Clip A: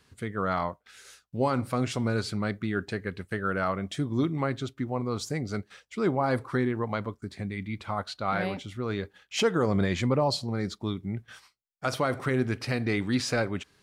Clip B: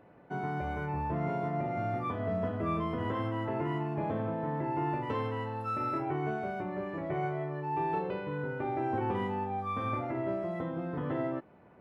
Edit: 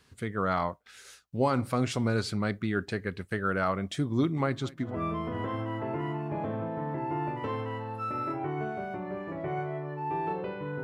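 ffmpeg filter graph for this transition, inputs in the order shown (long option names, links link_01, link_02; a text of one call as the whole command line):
ffmpeg -i cue0.wav -i cue1.wav -filter_complex "[0:a]asplit=3[link_01][link_02][link_03];[link_01]afade=type=out:start_time=4.36:duration=0.02[link_04];[link_02]aecho=1:1:216|432|648|864:0.0841|0.0471|0.0264|0.0148,afade=type=in:start_time=4.36:duration=0.02,afade=type=out:start_time=4.99:duration=0.02[link_05];[link_03]afade=type=in:start_time=4.99:duration=0.02[link_06];[link_04][link_05][link_06]amix=inputs=3:normalize=0,apad=whole_dur=10.83,atrim=end=10.83,atrim=end=4.99,asetpts=PTS-STARTPTS[link_07];[1:a]atrim=start=2.45:end=8.49,asetpts=PTS-STARTPTS[link_08];[link_07][link_08]acrossfade=duration=0.2:curve1=tri:curve2=tri" out.wav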